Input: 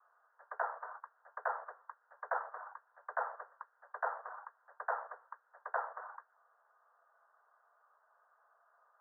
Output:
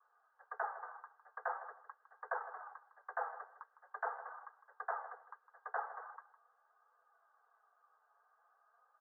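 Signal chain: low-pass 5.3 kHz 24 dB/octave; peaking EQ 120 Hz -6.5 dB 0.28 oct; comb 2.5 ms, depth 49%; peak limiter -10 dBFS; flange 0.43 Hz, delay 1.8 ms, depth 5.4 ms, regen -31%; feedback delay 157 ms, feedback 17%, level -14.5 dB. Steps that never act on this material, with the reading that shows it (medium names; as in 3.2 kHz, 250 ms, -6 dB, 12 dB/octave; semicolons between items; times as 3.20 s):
low-pass 5.3 kHz: input has nothing above 2 kHz; peaking EQ 120 Hz: input has nothing below 380 Hz; peak limiter -10 dBFS: peak at its input -21.0 dBFS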